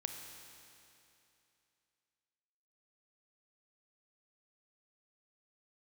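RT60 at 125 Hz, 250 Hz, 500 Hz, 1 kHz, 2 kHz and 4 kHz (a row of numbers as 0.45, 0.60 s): 2.8, 2.8, 2.8, 2.8, 2.8, 2.7 s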